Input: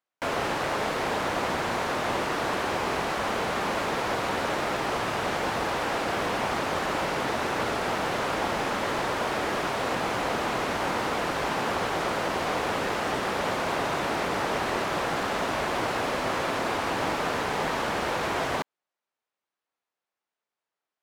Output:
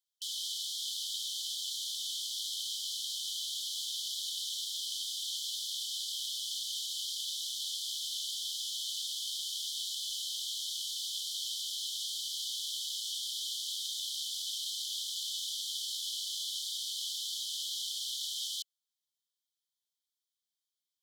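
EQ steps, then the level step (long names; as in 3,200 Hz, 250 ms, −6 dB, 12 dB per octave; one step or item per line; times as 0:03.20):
linear-phase brick-wall high-pass 3,000 Hz
+4.0 dB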